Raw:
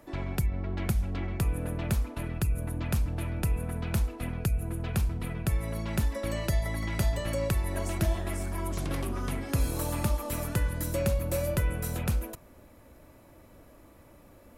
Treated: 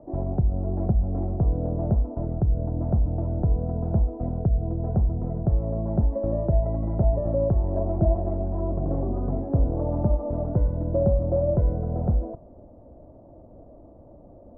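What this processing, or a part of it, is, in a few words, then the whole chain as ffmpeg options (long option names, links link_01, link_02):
under water: -af "lowpass=frequency=720:width=0.5412,lowpass=frequency=720:width=1.3066,equalizer=frequency=690:width_type=o:width=0.42:gain=7,volume=6dB"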